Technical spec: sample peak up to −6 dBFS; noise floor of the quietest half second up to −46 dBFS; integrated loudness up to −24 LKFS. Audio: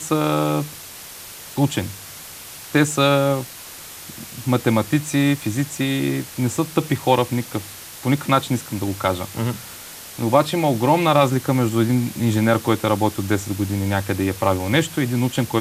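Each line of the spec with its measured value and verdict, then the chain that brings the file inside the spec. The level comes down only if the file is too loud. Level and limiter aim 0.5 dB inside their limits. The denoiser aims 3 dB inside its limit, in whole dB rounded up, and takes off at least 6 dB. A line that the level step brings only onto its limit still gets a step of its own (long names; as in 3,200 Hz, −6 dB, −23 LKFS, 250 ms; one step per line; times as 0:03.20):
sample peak −2.5 dBFS: out of spec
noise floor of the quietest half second −38 dBFS: out of spec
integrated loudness −20.5 LKFS: out of spec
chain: broadband denoise 7 dB, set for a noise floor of −38 dBFS
level −4 dB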